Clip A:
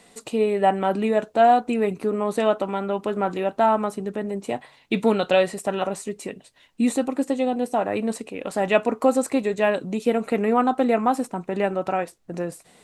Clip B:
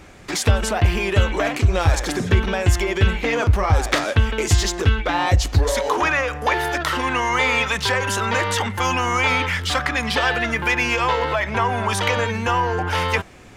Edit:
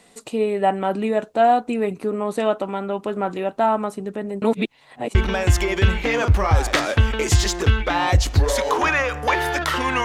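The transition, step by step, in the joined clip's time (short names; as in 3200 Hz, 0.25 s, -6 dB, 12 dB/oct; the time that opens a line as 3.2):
clip A
4.42–5.15 reverse
5.15 switch to clip B from 2.34 s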